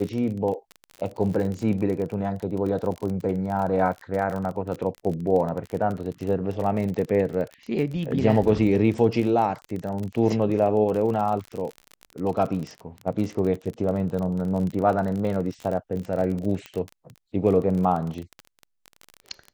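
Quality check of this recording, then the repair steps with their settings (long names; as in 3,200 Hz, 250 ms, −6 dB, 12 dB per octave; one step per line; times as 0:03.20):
surface crackle 33 per second −29 dBFS
0:16.66: click −21 dBFS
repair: click removal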